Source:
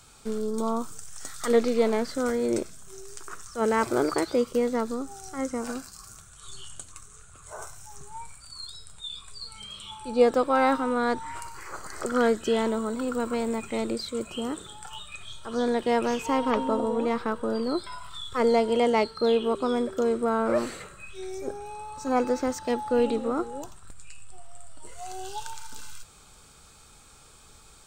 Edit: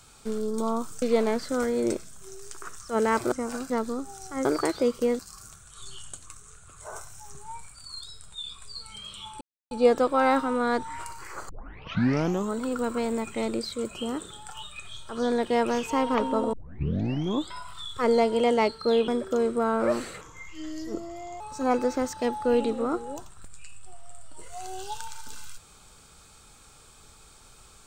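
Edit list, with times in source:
0:01.02–0:01.68: remove
0:03.98–0:04.72: swap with 0:05.47–0:05.85
0:10.07: splice in silence 0.30 s
0:11.85: tape start 1.03 s
0:16.89: tape start 1.01 s
0:19.44–0:19.74: remove
0:20.87–0:21.86: play speed 83%

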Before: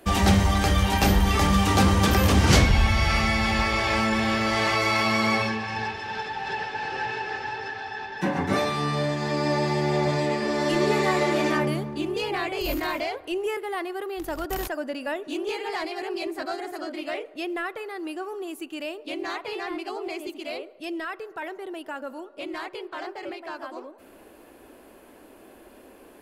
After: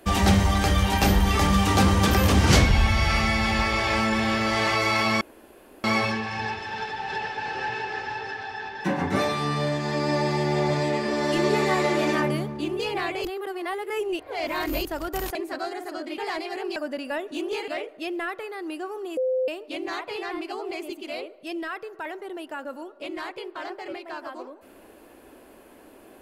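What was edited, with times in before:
0:05.21: splice in room tone 0.63 s
0:12.62–0:14.22: reverse
0:14.72–0:15.64: swap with 0:16.22–0:17.05
0:18.54–0:18.85: beep over 515 Hz −21 dBFS

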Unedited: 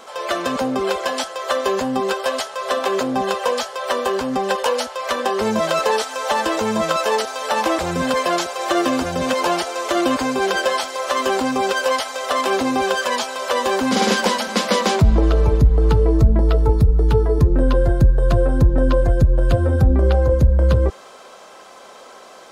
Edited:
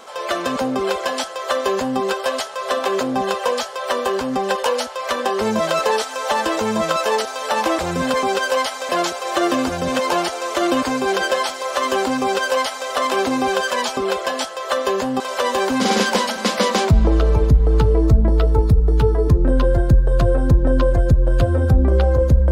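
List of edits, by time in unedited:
0:00.76–0:01.99: duplicate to 0:13.31
0:11.57–0:12.23: duplicate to 0:08.23

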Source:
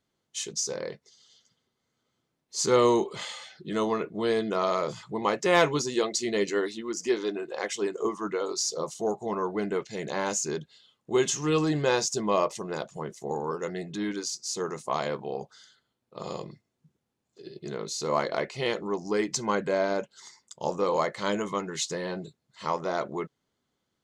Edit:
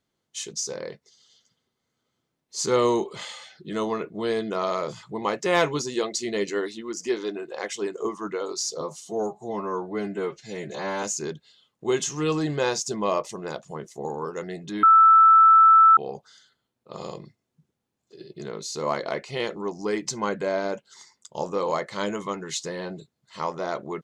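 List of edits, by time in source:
0:08.81–0:10.29: time-stretch 1.5×
0:14.09–0:15.23: beep over 1,320 Hz −10.5 dBFS

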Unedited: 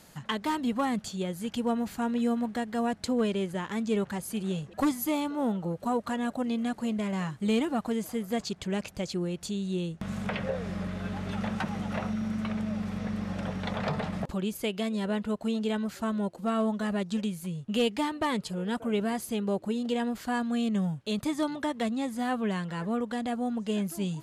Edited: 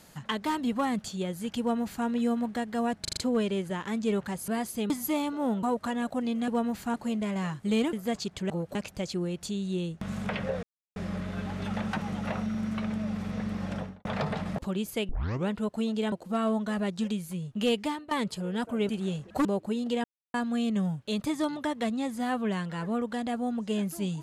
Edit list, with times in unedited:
0:01.60–0:02.06: duplicate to 0:06.71
0:03.01: stutter 0.04 s, 5 plays
0:04.32–0:04.88: swap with 0:19.02–0:19.44
0:05.61–0:05.86: move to 0:08.75
0:07.70–0:08.18: remove
0:10.63: splice in silence 0.33 s
0:13.40–0:13.72: fade out and dull
0:14.76: tape start 0.40 s
0:15.79–0:16.25: remove
0:17.95–0:18.24: fade out, to −16 dB
0:20.03–0:20.33: silence

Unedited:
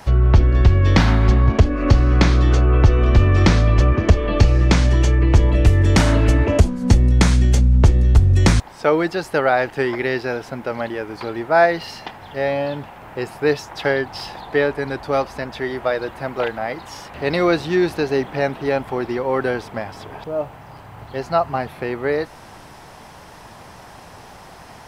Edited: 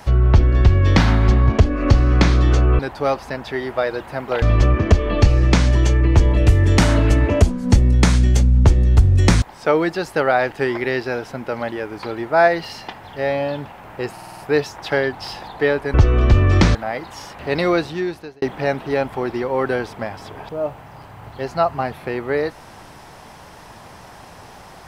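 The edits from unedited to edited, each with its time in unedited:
0:02.79–0:03.60: swap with 0:14.87–0:16.50
0:13.31: stutter 0.05 s, 6 plays
0:17.40–0:18.17: fade out

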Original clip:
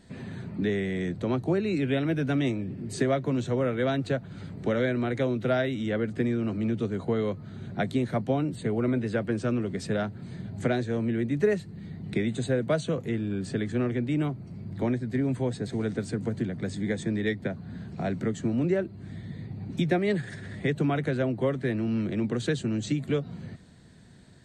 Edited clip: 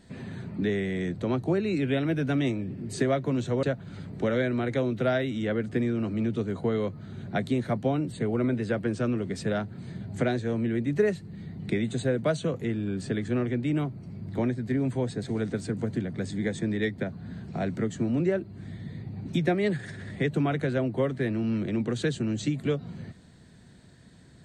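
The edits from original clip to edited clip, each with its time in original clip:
0:03.63–0:04.07: remove

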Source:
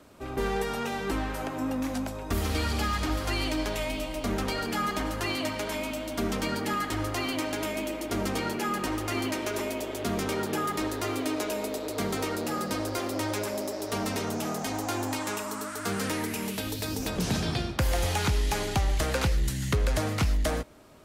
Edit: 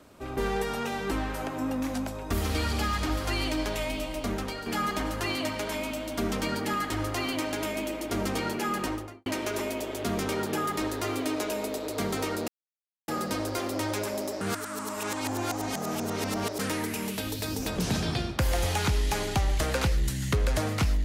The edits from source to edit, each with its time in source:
0:04.18–0:04.66: fade out, to −8 dB
0:08.82–0:09.26: fade out and dull
0:12.48: splice in silence 0.60 s
0:13.81–0:15.99: reverse

